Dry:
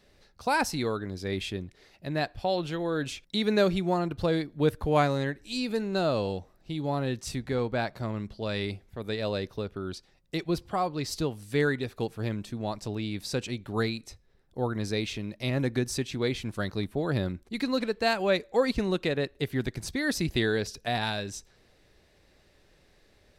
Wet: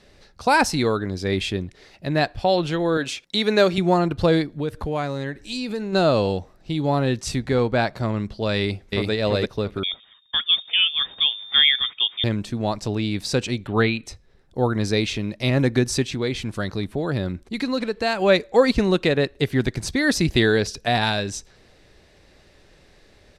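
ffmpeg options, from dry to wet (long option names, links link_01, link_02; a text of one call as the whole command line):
ffmpeg -i in.wav -filter_complex "[0:a]asettb=1/sr,asplit=3[link_01][link_02][link_03];[link_01]atrim=end=2.974[link_04];[link_02]atrim=start=2.97:end=3.78,asetpts=PTS-STARTPTS,afade=type=in:duration=0.004:curve=qsin,afade=type=out:start_time=0.806:duration=0.004:curve=qsin,highpass=frequency=350:poles=1[link_05];[link_03]atrim=start=3.776[link_06];[link_04][link_05]acrossfade=duration=0.004:curve1=hsin:curve2=qsin[link_07];[link_07][link_06]acrossfade=duration=0.004:curve1=qsin:curve2=hsin,asplit=3[link_08][link_09][link_10];[link_08]afade=type=out:start_time=4.53:duration=0.02[link_11];[link_09]acompressor=threshold=-35dB:ratio=2.5:attack=3.2:release=140:knee=1:detection=peak,afade=type=in:start_time=4.53:duration=0.02,afade=type=out:start_time=5.92:duration=0.02[link_12];[link_10]afade=type=in:start_time=5.92:duration=0.02[link_13];[link_11][link_12][link_13]amix=inputs=3:normalize=0,asplit=2[link_14][link_15];[link_15]afade=type=in:start_time=8.58:duration=0.01,afade=type=out:start_time=9.11:duration=0.01,aecho=0:1:340|680|1020:0.944061|0.188812|0.0377624[link_16];[link_14][link_16]amix=inputs=2:normalize=0,asettb=1/sr,asplit=3[link_17][link_18][link_19];[link_17]atrim=end=9.834[link_20];[link_18]atrim=start=9.83:end=12.24,asetpts=PTS-STARTPTS,afade=type=in:duration=0.004:curve=qsin,afade=type=out:start_time=2.406:duration=0.004:curve=qsin,lowpass=frequency=3100:width_type=q:width=0.5098,lowpass=frequency=3100:width_type=q:width=0.6013,lowpass=frequency=3100:width_type=q:width=0.9,lowpass=frequency=3100:width_type=q:width=2.563,afreqshift=-3700[link_21];[link_19]atrim=start=12.236[link_22];[link_20][link_21]acrossfade=duration=0.004:curve1=hsin:curve2=qsin[link_23];[link_23][link_22]acrossfade=duration=0.004:curve1=qsin:curve2=hsin,asettb=1/sr,asplit=3[link_24][link_25][link_26];[link_24]atrim=end=13.674[link_27];[link_25]atrim=start=13.67:end=14.07,asetpts=PTS-STARTPTS,afade=type=in:duration=0.004:curve=qsin,afade=type=out:start_time=0.396:duration=0.004:curve=qsin,highshelf=frequency=4100:width_type=q:width=3:gain=-10.5[link_28];[link_26]atrim=start=14.066[link_29];[link_27][link_28]acrossfade=duration=0.004:curve1=hsin:curve2=qsin[link_30];[link_30][link_29]acrossfade=duration=0.004:curve1=qsin:curve2=hsin,asettb=1/sr,asplit=3[link_31][link_32][link_33];[link_31]atrim=end=16.054[link_34];[link_32]atrim=start=16.05:end=18.22,asetpts=PTS-STARTPTS,afade=type=in:duration=0.004:curve=qsin,afade=type=out:start_time=2.166:duration=0.004:curve=qsin,acompressor=threshold=-36dB:ratio=1.5:attack=3.2:release=140:knee=1:detection=peak[link_35];[link_33]atrim=start=18.216[link_36];[link_34][link_35]acrossfade=duration=0.004:curve1=hsin:curve2=qsin[link_37];[link_37][link_36]acrossfade=duration=0.004:curve1=qsin:curve2=hsin,lowpass=10000,volume=8.5dB" out.wav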